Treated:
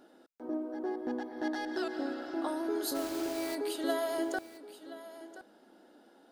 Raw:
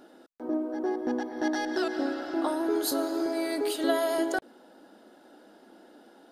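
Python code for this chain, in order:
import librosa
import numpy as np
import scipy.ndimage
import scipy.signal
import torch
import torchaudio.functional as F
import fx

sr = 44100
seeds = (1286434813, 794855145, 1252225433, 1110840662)

p1 = fx.notch(x, sr, hz=5700.0, q=12.0, at=(0.74, 2.26))
p2 = fx.quant_dither(p1, sr, seeds[0], bits=6, dither='none', at=(2.94, 3.54), fade=0.02)
p3 = p2 + fx.echo_single(p2, sr, ms=1025, db=-15.0, dry=0)
y = p3 * 10.0 ** (-6.0 / 20.0)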